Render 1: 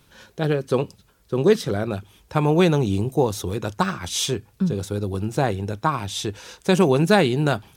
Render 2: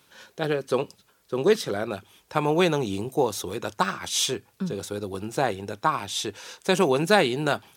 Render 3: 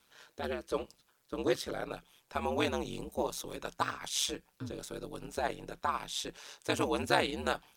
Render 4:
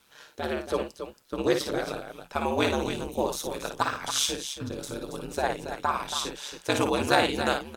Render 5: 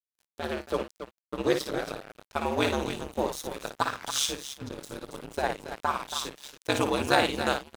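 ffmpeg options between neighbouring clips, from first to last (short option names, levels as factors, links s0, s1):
-af "highpass=f=430:p=1"
-af "equalizer=f=230:w=0.8:g=-5,aeval=exprs='val(0)*sin(2*PI*70*n/s)':c=same,volume=0.562"
-af "aecho=1:1:55|277:0.473|0.355,volume=1.88"
-af "aeval=exprs='sgn(val(0))*max(abs(val(0))-0.0112,0)':c=same"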